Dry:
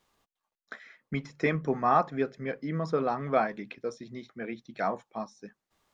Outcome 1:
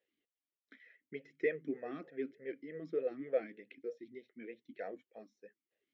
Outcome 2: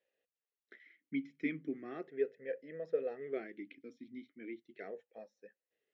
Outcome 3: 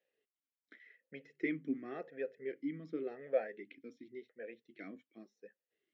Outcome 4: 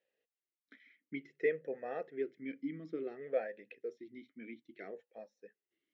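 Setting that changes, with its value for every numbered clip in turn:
talking filter, rate: 3.3 Hz, 0.37 Hz, 0.9 Hz, 0.57 Hz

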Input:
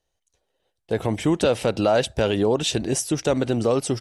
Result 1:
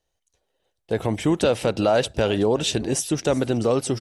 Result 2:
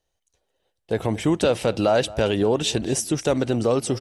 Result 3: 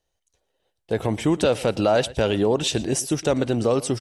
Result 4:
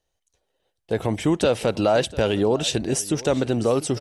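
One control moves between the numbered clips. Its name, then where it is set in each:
delay, time: 374 ms, 223 ms, 115 ms, 696 ms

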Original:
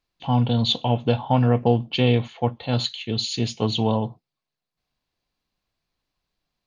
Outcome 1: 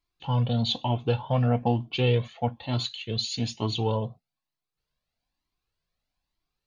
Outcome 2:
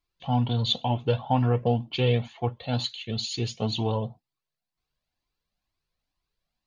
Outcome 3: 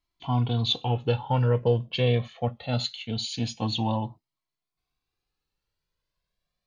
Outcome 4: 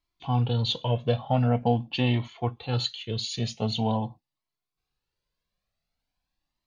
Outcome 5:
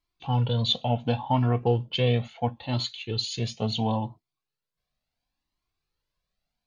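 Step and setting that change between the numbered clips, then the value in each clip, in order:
Shepard-style flanger, rate: 1.1 Hz, 2.1 Hz, 0.23 Hz, 0.45 Hz, 0.72 Hz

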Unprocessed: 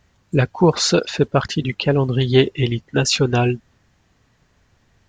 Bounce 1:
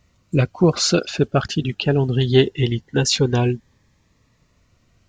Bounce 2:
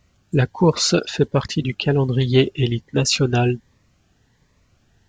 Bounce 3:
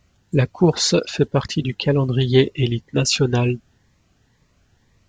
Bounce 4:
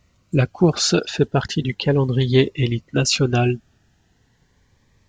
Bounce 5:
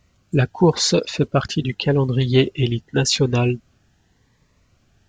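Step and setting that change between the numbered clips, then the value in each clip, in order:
Shepard-style phaser, rate: 0.22 Hz, 1.3 Hz, 2 Hz, 0.37 Hz, 0.87 Hz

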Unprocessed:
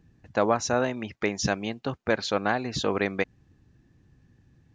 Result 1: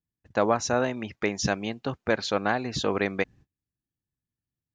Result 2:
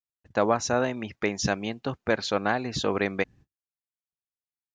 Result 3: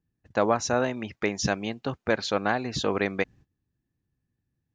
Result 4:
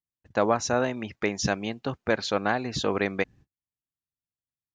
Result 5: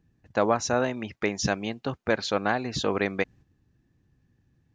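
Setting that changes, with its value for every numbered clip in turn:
gate, range: -32 dB, -58 dB, -20 dB, -45 dB, -7 dB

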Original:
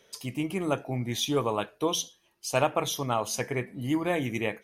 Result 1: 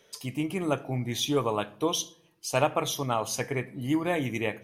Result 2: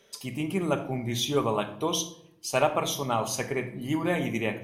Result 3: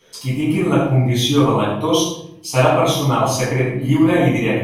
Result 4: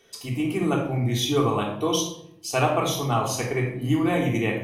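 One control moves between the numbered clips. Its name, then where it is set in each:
simulated room, microphone at: 0.37 m, 1.2 m, 11 m, 3.5 m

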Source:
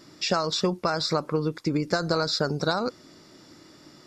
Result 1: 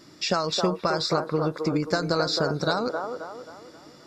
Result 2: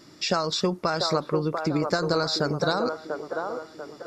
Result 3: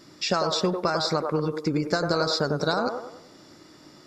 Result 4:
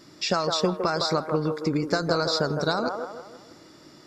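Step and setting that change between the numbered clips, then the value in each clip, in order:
feedback echo behind a band-pass, time: 266 ms, 692 ms, 98 ms, 160 ms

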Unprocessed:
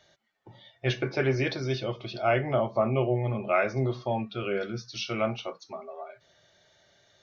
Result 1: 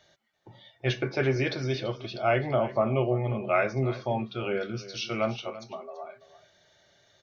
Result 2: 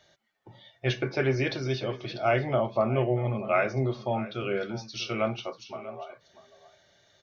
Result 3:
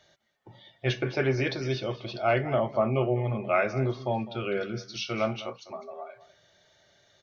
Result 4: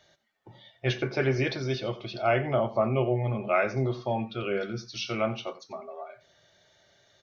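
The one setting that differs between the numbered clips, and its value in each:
delay, time: 335 ms, 640 ms, 204 ms, 89 ms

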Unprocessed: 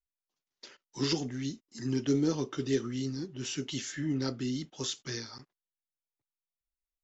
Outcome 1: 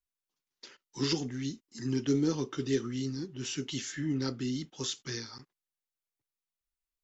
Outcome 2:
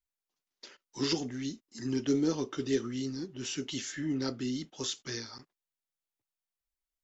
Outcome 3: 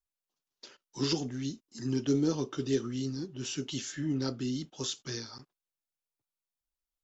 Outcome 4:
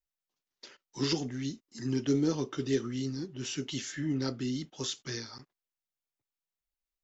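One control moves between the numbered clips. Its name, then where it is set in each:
peaking EQ, frequency: 640 Hz, 140 Hz, 2 kHz, 10 kHz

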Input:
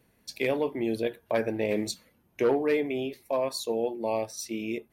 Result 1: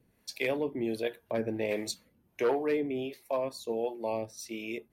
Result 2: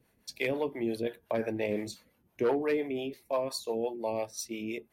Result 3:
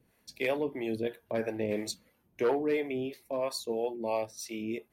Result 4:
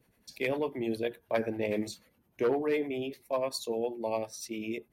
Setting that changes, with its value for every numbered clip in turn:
harmonic tremolo, rate: 1.4 Hz, 5.8 Hz, 3 Hz, 10 Hz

